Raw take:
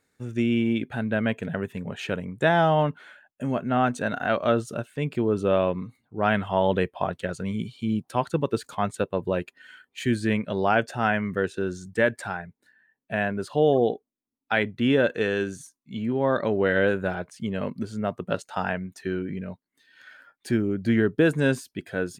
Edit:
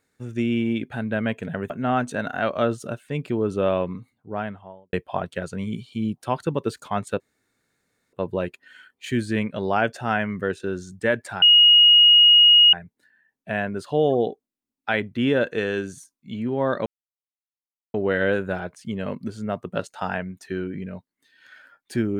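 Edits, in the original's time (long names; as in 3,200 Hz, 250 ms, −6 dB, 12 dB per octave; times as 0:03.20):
0:01.70–0:03.57: remove
0:05.79–0:06.80: fade out and dull
0:09.07: splice in room tone 0.93 s
0:12.36: insert tone 2,880 Hz −9.5 dBFS 1.31 s
0:16.49: splice in silence 1.08 s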